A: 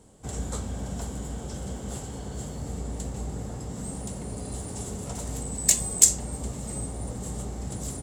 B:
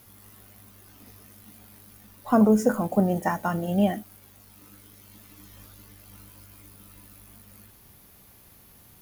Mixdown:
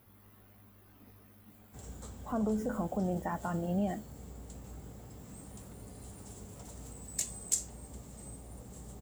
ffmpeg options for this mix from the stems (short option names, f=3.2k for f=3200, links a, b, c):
-filter_complex "[0:a]adelay=1500,volume=-14.5dB[a];[1:a]equalizer=f=7.4k:t=o:w=2.4:g=-13,alimiter=limit=-19.5dB:level=0:latency=1:release=73,volume=-5.5dB[b];[a][b]amix=inputs=2:normalize=0"